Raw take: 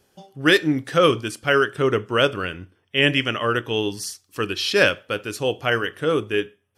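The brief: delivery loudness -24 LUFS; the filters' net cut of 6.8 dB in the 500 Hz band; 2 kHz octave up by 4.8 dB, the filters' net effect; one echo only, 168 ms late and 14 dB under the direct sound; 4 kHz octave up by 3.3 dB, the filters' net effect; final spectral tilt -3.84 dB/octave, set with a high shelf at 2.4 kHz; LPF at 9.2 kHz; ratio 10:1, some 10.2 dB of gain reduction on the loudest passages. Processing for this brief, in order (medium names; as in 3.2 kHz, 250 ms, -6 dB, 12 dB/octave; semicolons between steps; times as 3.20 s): low-pass 9.2 kHz; peaking EQ 500 Hz -8.5 dB; peaking EQ 2 kHz +8 dB; treble shelf 2.4 kHz -4.5 dB; peaking EQ 4 kHz +5 dB; compression 10:1, threshold -19 dBFS; delay 168 ms -14 dB; trim +1 dB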